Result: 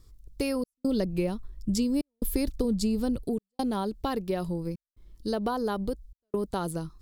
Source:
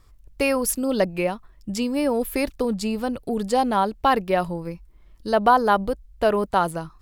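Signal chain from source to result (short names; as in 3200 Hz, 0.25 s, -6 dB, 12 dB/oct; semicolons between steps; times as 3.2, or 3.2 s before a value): band shelf 1300 Hz -10 dB 2.6 oct; step gate "xxxxxx..xxxxx" 142 bpm -60 dB; compressor, threshold -25 dBFS, peak gain reduction 6.5 dB; 0.75–3.25 low shelf 130 Hz +10 dB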